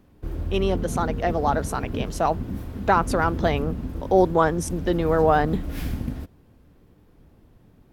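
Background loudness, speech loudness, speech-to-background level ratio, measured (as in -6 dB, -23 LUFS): -32.0 LUFS, -23.5 LUFS, 8.5 dB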